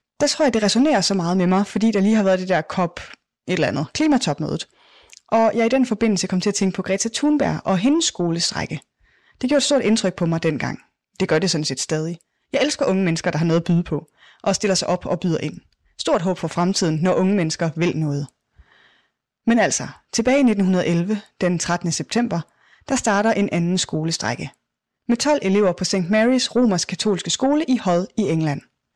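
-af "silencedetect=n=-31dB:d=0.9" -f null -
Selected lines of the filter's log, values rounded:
silence_start: 18.29
silence_end: 19.47 | silence_duration: 1.19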